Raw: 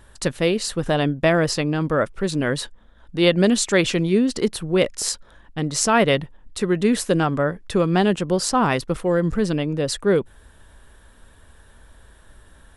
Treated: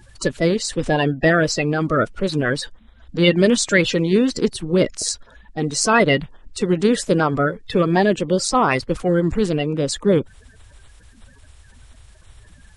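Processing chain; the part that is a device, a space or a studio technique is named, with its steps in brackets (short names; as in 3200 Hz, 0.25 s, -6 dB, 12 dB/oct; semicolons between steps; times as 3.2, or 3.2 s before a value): clip after many re-uploads (LPF 8900 Hz 24 dB/oct; bin magnitudes rounded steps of 30 dB); gain +2.5 dB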